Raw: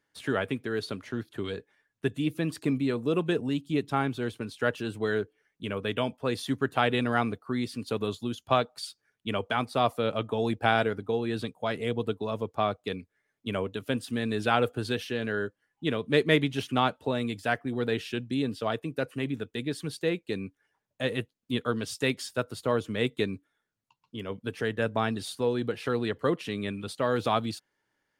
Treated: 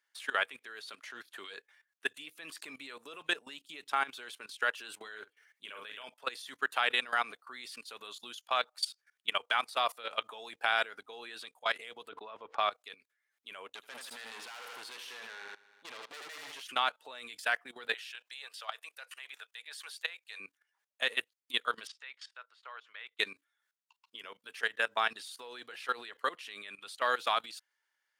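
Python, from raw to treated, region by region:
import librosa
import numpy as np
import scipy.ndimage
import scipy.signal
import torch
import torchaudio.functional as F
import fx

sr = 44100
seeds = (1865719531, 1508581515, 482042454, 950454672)

y = fx.chain(x, sr, fx.over_compress(threshold_db=-33.0, ratio=-1.0),
    fx.doubler(ms=47.0, db=-8.0), at=(4.96, 6.04))
y = fx.chain(y, sr, fx.lowpass(hz=2300.0, slope=12),
    fx.sustainer(db_per_s=110.0), at=(12.09, 12.58))
y = fx.chain(y, sr, fx.tube_stage(drive_db=33.0, bias=0.75),
    fx.echo_feedback(ms=79, feedback_pct=57, wet_db=-8), at=(13.68, 16.62))
y = fx.chain(y, sr, fx.highpass(hz=620.0, slope=24),
    fx.band_squash(depth_pct=40), at=(17.94, 20.4))
y = fx.chain(y, sr, fx.highpass(hz=1100.0, slope=12),
    fx.spacing_loss(db_at_10k=33), at=(21.87, 23.19))
y = scipy.signal.sosfilt(scipy.signal.butter(2, 1200.0, 'highpass', fs=sr, output='sos'), y)
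y = fx.level_steps(y, sr, step_db=18)
y = y * librosa.db_to_amplitude(7.5)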